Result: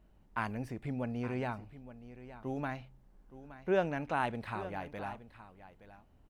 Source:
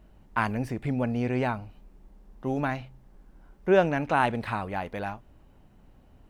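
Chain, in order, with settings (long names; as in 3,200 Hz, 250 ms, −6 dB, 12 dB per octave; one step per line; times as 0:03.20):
single-tap delay 870 ms −14.5 dB
level −9 dB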